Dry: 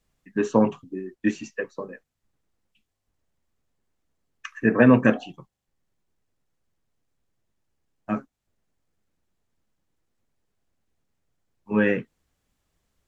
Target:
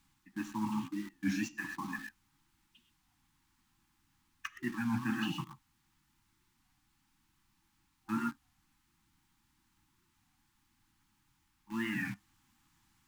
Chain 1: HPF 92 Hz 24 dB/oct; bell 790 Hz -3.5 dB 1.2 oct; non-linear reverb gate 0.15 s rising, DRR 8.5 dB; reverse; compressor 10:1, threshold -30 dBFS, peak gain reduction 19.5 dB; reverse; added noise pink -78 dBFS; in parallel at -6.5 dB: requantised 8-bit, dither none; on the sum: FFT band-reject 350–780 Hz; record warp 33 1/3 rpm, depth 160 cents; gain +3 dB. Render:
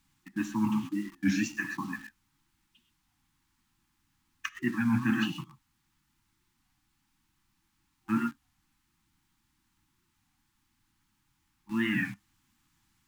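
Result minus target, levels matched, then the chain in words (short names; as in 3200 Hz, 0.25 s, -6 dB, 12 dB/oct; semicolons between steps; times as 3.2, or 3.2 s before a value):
compressor: peak gain reduction -7.5 dB; 1000 Hz band -4.0 dB
HPF 92 Hz 24 dB/oct; bell 790 Hz +3.5 dB 1.2 oct; non-linear reverb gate 0.15 s rising, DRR 8.5 dB; reverse; compressor 10:1, threshold -37 dBFS, peak gain reduction 27 dB; reverse; added noise pink -78 dBFS; in parallel at -6.5 dB: requantised 8-bit, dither none; on the sum: FFT band-reject 350–780 Hz; record warp 33 1/3 rpm, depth 160 cents; gain +3 dB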